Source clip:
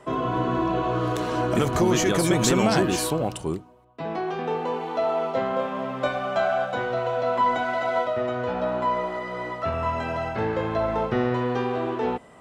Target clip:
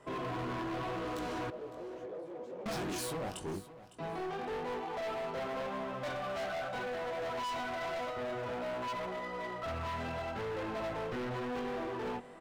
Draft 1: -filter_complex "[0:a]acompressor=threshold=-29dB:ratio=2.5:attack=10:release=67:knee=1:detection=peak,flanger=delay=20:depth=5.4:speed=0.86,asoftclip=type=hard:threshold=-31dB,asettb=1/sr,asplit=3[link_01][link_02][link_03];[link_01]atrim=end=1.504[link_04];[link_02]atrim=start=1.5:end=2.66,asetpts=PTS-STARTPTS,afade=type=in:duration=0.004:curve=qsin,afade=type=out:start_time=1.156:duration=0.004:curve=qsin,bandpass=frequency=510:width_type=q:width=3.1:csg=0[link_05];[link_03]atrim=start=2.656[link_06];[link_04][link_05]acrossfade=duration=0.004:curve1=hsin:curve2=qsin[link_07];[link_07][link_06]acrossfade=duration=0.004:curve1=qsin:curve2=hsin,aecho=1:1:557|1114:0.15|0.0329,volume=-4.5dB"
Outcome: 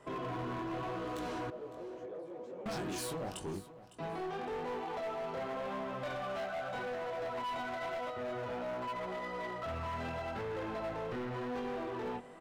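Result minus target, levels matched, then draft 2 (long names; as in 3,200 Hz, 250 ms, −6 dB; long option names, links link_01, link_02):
downward compressor: peak gain reduction +8.5 dB
-filter_complex "[0:a]flanger=delay=20:depth=5.4:speed=0.86,asoftclip=type=hard:threshold=-31dB,asettb=1/sr,asplit=3[link_01][link_02][link_03];[link_01]atrim=end=1.504[link_04];[link_02]atrim=start=1.5:end=2.66,asetpts=PTS-STARTPTS,afade=type=in:duration=0.004:curve=qsin,afade=type=out:start_time=1.156:duration=0.004:curve=qsin,bandpass=frequency=510:width_type=q:width=3.1:csg=0[link_05];[link_03]atrim=start=2.656[link_06];[link_04][link_05]acrossfade=duration=0.004:curve1=hsin:curve2=qsin[link_07];[link_07][link_06]acrossfade=duration=0.004:curve1=qsin:curve2=hsin,aecho=1:1:557|1114:0.15|0.0329,volume=-4.5dB"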